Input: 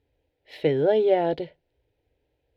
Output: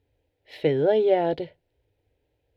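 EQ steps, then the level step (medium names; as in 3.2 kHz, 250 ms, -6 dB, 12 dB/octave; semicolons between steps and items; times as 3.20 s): peaking EQ 100 Hz +7.5 dB 0.22 oct; 0.0 dB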